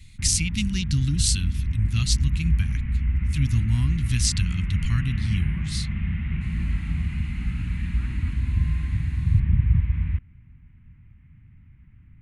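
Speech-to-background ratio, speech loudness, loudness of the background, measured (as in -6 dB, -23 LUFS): 0.0 dB, -26.5 LUFS, -26.5 LUFS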